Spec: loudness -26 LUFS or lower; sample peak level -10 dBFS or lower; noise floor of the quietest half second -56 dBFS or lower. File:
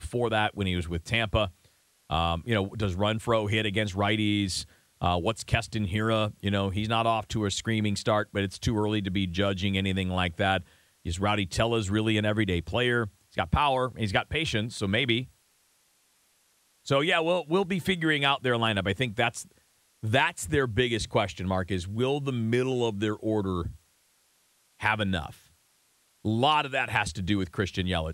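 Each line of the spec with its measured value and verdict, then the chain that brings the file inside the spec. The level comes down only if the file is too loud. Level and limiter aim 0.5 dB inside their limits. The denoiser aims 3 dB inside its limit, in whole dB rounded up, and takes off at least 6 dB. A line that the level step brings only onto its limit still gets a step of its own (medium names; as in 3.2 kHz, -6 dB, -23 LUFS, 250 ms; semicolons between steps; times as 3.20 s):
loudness -27.5 LUFS: pass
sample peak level -11.0 dBFS: pass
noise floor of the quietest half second -67 dBFS: pass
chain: none needed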